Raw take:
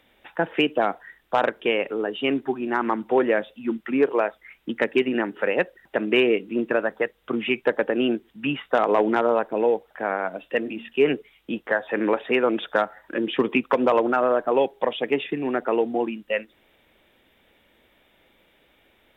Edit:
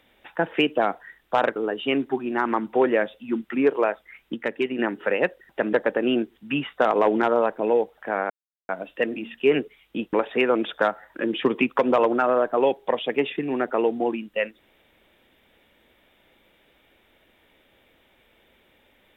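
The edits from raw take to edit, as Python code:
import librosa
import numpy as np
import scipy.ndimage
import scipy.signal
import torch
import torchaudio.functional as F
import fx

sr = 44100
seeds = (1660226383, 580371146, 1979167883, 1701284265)

y = fx.edit(x, sr, fx.cut(start_s=1.56, length_s=0.36),
    fx.clip_gain(start_s=4.7, length_s=0.45, db=-4.5),
    fx.cut(start_s=6.09, length_s=1.57),
    fx.insert_silence(at_s=10.23, length_s=0.39),
    fx.cut(start_s=11.67, length_s=0.4), tone=tone)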